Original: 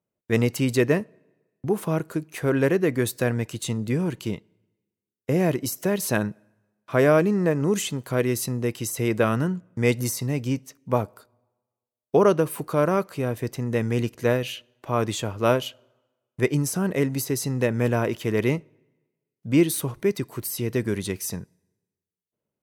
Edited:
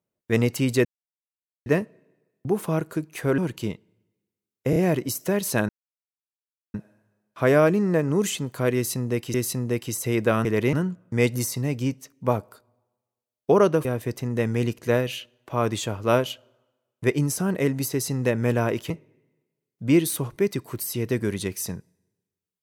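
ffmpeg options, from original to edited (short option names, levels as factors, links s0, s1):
-filter_complex "[0:a]asplit=11[s0][s1][s2][s3][s4][s5][s6][s7][s8][s9][s10];[s0]atrim=end=0.85,asetpts=PTS-STARTPTS,afade=t=out:st=0.846:d=0.004:c=hsin,apad=pad_dur=0.81[s11];[s1]atrim=start=0.85:end=2.572,asetpts=PTS-STARTPTS,afade=t=in:d=0.004:c=hsin[s12];[s2]atrim=start=4.008:end=5.362[s13];[s3]atrim=start=5.328:end=5.362[s14];[s4]atrim=start=5.328:end=6.26,asetpts=PTS-STARTPTS,afade=t=out:st=0.928:d=0.004:c=hsin,apad=pad_dur=1.05[s15];[s5]atrim=start=6.26:end=8.862,asetpts=PTS-STARTPTS,afade=t=in:d=0.004:c=hsin[s16];[s6]atrim=start=8.268:end=9.382[s17];[s7]atrim=start=18.258:end=18.542[s18];[s8]atrim=start=9.378:end=12.502[s19];[s9]atrim=start=13.208:end=18.262[s20];[s10]atrim=start=18.538[s21];[s11][s12]concat=n=2:v=0:a=1[s22];[s22][s13]acrossfade=d=0.004:c1=hsin:c2=hsin[s23];[s23][s14]acrossfade=d=0.004:c1=hsin:c2=hsin[s24];[s15][s16]concat=n=2:v=0:a=1[s25];[s24][s25]acrossfade=d=0.004:c1=hsin:c2=hsin[s26];[s26][s17]acrossfade=d=0.004:c1=hsin:c2=hsin[s27];[s27][s18]acrossfade=d=0.004:c1=hsin:c2=hsin[s28];[s28][s19]acrossfade=d=0.004:c1=hsin:c2=hsin[s29];[s29][s20]acrossfade=d=0.004:c1=hsin:c2=hsin[s30];[s30][s21]acrossfade=d=0.004:c1=hsin:c2=hsin"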